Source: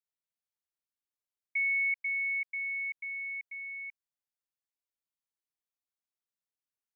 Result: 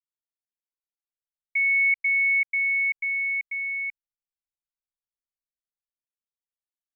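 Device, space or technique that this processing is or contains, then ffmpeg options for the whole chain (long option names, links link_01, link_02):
voice memo with heavy noise removal: -af "anlmdn=0.00251,dynaudnorm=framelen=310:gausssize=11:maxgain=11.5dB"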